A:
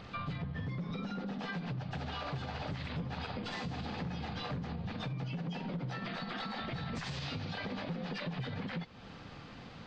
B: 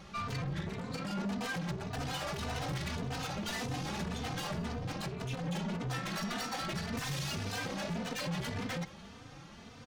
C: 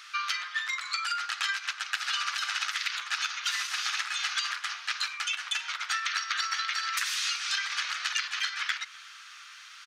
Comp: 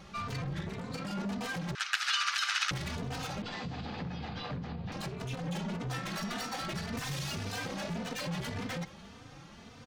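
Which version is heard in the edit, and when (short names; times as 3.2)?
B
1.75–2.71 from C
3.42–4.92 from A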